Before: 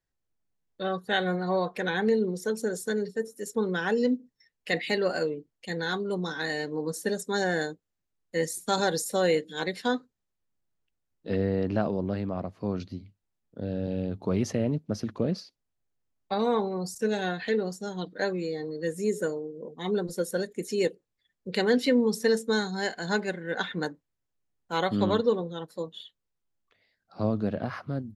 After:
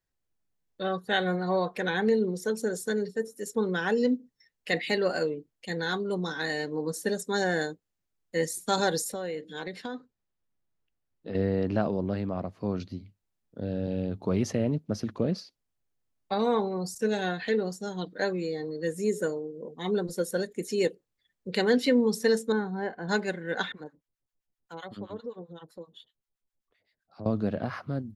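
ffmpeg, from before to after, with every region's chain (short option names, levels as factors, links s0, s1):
-filter_complex "[0:a]asettb=1/sr,asplit=3[s0][s1][s2];[s0]atrim=end=9.124[s3];[s1]atrim=start=9.12:end=11.35,asetpts=PTS-STARTPTS,afade=t=in:d=0.004:c=qsin,afade=t=out:st=2.226:d=0.004:c=qsin,lowpass=f=3400:p=1,acompressor=threshold=0.0251:ratio=4:attack=3.2:release=140:knee=1:detection=peak[s4];[s2]atrim=start=11.346[s5];[s3][s4]acrossfade=d=0.004:c1=hsin:c2=qsin[s6];[s6][s5]acrossfade=d=0.004:c1=qsin:c2=hsin,asettb=1/sr,asplit=3[s7][s8][s9];[s7]atrim=end=22.524[s10];[s8]atrim=start=22.52:end=23.09,asetpts=PTS-STARTPTS,afade=t=in:d=0.004:c=qsin,afade=t=out:st=0.566:d=0.004:c=qsin,lowpass=1200,bandreject=f=640:w=9.8[s11];[s9]atrim=start=23.086[s12];[s10][s11]acrossfade=d=0.004:c1=hsin:c2=qsin[s13];[s13][s12]acrossfade=d=0.004:c1=qsin:c2=hsin,asettb=1/sr,asplit=3[s14][s15][s16];[s14]atrim=end=23.724[s17];[s15]atrim=start=23.72:end=27.26,asetpts=PTS-STARTPTS,afade=t=in:d=0.004:c=qsin,afade=t=out:st=3.536:d=0.004:c=qsin,acrossover=split=890[s18][s19];[s18]aeval=exprs='val(0)*(1-1/2+1/2*cos(2*PI*7.7*n/s))':c=same[s20];[s19]aeval=exprs='val(0)*(1-1/2-1/2*cos(2*PI*7.7*n/s))':c=same[s21];[s20][s21]amix=inputs=2:normalize=0,acompressor=threshold=0.00708:ratio=2:attack=3.2:release=140:knee=1:detection=peak,adynamicequalizer=threshold=0.001:dfrequency=2000:dqfactor=0.7:tfrequency=2000:tqfactor=0.7:attack=5:release=100:ratio=0.375:range=2.5:mode=cutabove:tftype=highshelf[s22];[s16]atrim=start=27.256[s23];[s17][s22]acrossfade=d=0.004:c1=hsin:c2=qsin[s24];[s24][s23]acrossfade=d=0.004:c1=qsin:c2=hsin"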